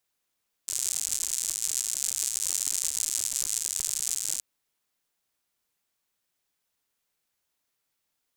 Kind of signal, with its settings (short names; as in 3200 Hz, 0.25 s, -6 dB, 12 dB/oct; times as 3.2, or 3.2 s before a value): rain from filtered ticks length 3.72 s, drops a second 130, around 7400 Hz, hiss -29.5 dB